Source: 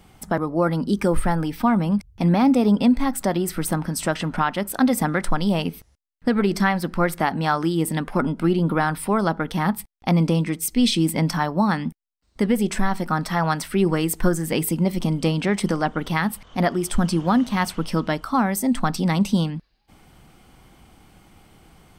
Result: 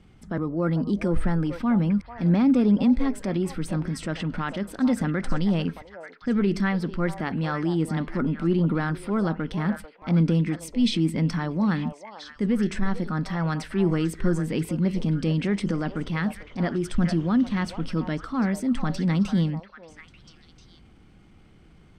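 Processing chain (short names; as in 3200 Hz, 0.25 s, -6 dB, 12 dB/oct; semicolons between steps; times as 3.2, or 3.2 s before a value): LPF 7100 Hz 12 dB/oct; high shelf 2700 Hz -11 dB; transient shaper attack -5 dB, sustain +2 dB; bell 810 Hz -11 dB 1.2 oct; delay with a stepping band-pass 0.444 s, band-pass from 720 Hz, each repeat 1.4 oct, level -5.5 dB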